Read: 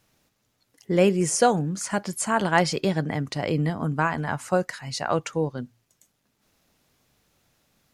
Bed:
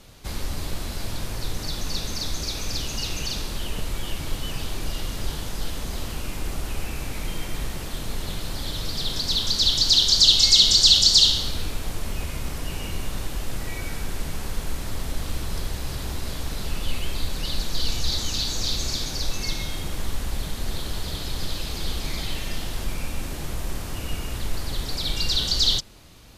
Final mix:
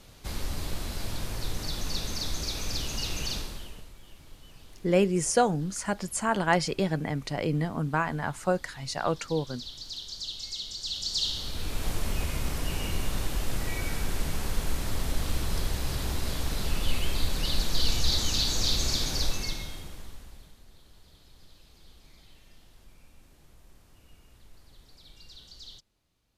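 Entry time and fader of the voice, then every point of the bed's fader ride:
3.95 s, −3.5 dB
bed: 0:03.35 −3.5 dB
0:03.95 −21.5 dB
0:10.78 −21.5 dB
0:11.86 −0.5 dB
0:19.23 −0.5 dB
0:20.67 −26.5 dB

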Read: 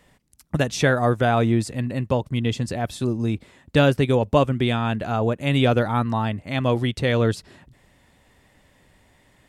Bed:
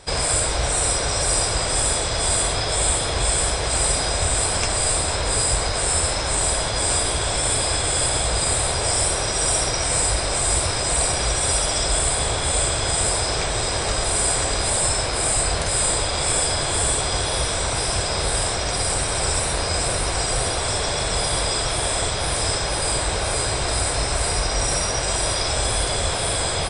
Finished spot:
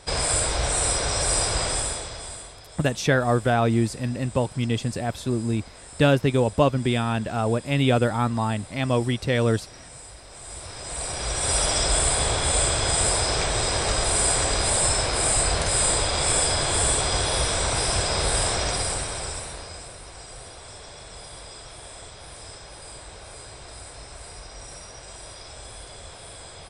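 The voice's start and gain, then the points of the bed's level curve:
2.25 s, −1.5 dB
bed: 0:01.66 −2.5 dB
0:02.60 −23 dB
0:10.24 −23 dB
0:11.62 −1 dB
0:18.64 −1 dB
0:19.94 −19 dB

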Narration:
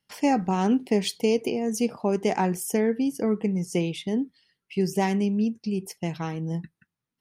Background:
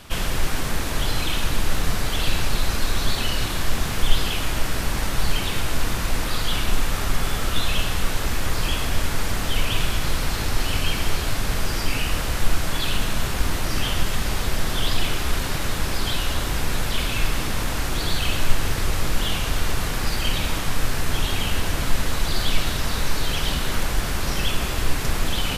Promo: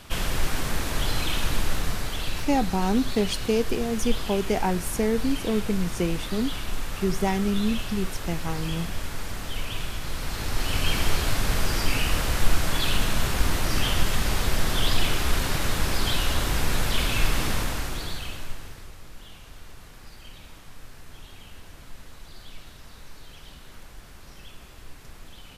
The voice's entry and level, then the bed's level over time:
2.25 s, −1.0 dB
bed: 0:01.56 −2.5 dB
0:02.48 −9 dB
0:10.05 −9 dB
0:10.95 −0.5 dB
0:17.52 −0.5 dB
0:18.97 −22 dB

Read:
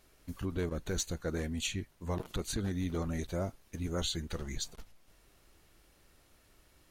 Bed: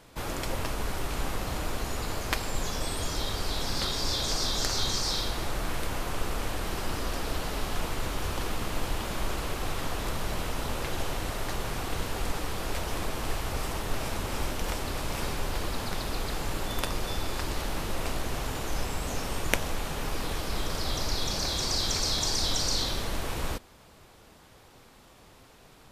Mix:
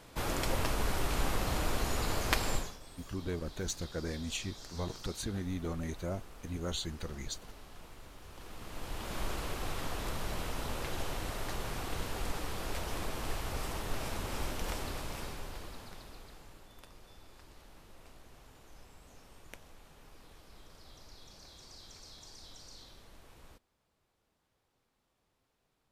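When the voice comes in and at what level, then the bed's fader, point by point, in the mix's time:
2.70 s, −2.5 dB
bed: 0:02.54 −0.5 dB
0:02.79 −20.5 dB
0:08.25 −20.5 dB
0:09.18 −5.5 dB
0:14.82 −5.5 dB
0:16.69 −24.5 dB

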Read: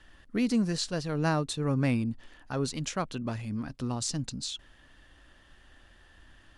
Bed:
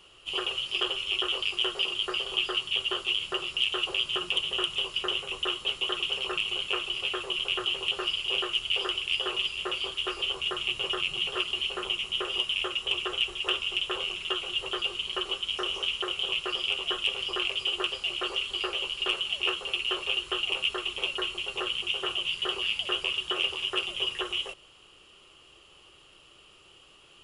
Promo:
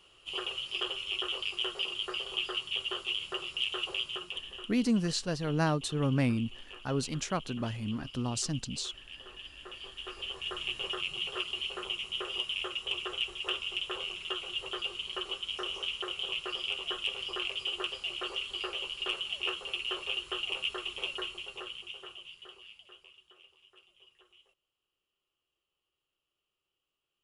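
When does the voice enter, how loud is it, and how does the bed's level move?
4.35 s, −1.0 dB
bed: 0:03.98 −5.5 dB
0:04.84 −19.5 dB
0:09.23 −19.5 dB
0:10.61 −5.5 dB
0:21.16 −5.5 dB
0:23.43 −31.5 dB

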